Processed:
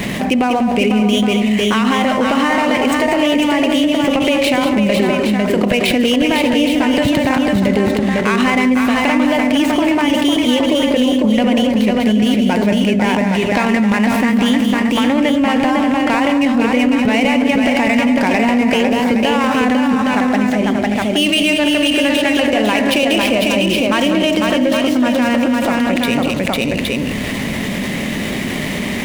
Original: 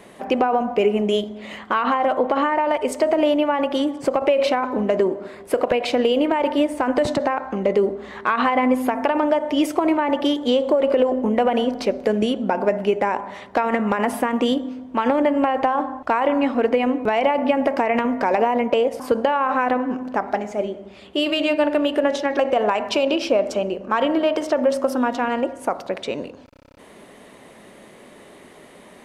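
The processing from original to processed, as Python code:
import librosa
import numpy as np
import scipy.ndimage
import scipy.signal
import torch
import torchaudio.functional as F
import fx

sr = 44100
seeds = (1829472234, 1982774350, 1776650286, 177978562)

y = scipy.ndimage.median_filter(x, 9, mode='constant')
y = fx.band_shelf(y, sr, hz=710.0, db=-12.5, octaves=2.5)
y = fx.echo_multitap(y, sr, ms=(194, 501, 585, 817), db=(-9.0, -4.5, -13.5, -8.0))
y = fx.env_flatten(y, sr, amount_pct=70)
y = y * librosa.db_to_amplitude(7.0)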